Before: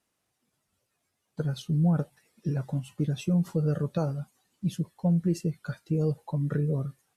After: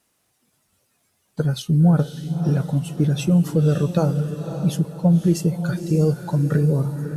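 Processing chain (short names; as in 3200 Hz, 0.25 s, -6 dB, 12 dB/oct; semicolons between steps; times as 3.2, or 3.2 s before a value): high shelf 7000 Hz +5.5 dB, from 5.39 s +11 dB; diffused feedback echo 0.555 s, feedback 40%, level -9 dB; gain +8.5 dB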